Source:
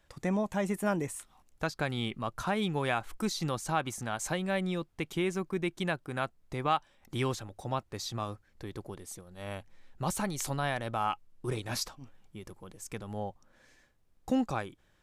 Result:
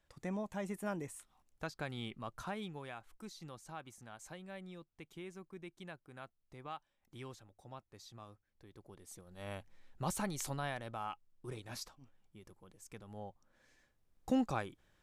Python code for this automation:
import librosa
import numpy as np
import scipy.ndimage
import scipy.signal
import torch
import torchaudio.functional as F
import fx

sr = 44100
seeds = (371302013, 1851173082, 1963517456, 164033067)

y = fx.gain(x, sr, db=fx.line((2.43, -9.5), (2.91, -17.5), (8.71, -17.5), (9.3, -5.0), (10.35, -5.0), (11.09, -11.5), (13.08, -11.5), (14.3, -3.5)))